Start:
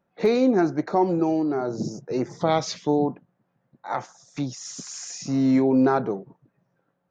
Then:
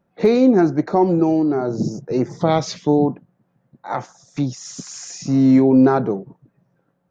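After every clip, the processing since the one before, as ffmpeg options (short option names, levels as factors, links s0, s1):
-af "lowshelf=f=390:g=7,volume=1.26"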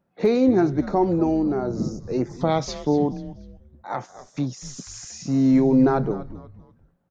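-filter_complex "[0:a]asplit=4[s0][s1][s2][s3];[s1]adelay=243,afreqshift=-120,volume=0.188[s4];[s2]adelay=486,afreqshift=-240,volume=0.07[s5];[s3]adelay=729,afreqshift=-360,volume=0.0257[s6];[s0][s4][s5][s6]amix=inputs=4:normalize=0,volume=0.596"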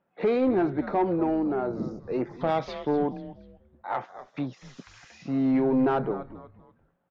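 -filter_complex "[0:a]highshelf=f=4600:t=q:w=1.5:g=-12.5,asplit=2[s0][s1];[s1]highpass=f=720:p=1,volume=5.62,asoftclip=type=tanh:threshold=0.422[s2];[s0][s2]amix=inputs=2:normalize=0,lowpass=f=1600:p=1,volume=0.501,volume=0.473"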